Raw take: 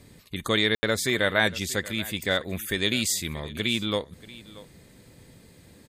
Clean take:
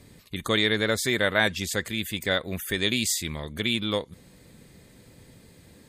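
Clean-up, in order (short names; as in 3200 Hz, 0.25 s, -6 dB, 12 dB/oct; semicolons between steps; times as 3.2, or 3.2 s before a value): room tone fill 0.75–0.83; inverse comb 0.634 s -19 dB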